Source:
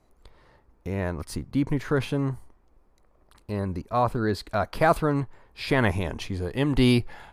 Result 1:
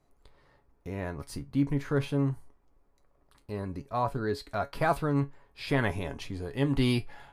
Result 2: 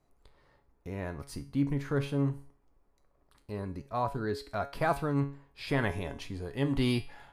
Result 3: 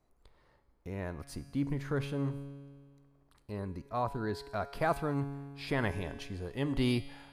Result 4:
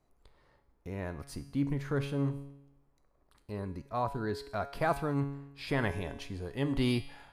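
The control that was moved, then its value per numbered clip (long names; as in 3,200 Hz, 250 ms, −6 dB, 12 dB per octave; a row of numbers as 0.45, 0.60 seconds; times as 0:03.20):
tuned comb filter, decay: 0.16, 0.39, 1.8, 0.86 seconds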